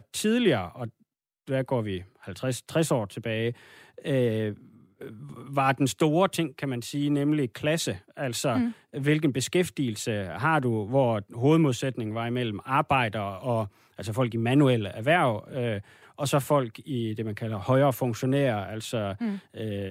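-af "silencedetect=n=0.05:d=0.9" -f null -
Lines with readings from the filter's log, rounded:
silence_start: 4.49
silence_end: 5.57 | silence_duration: 1.08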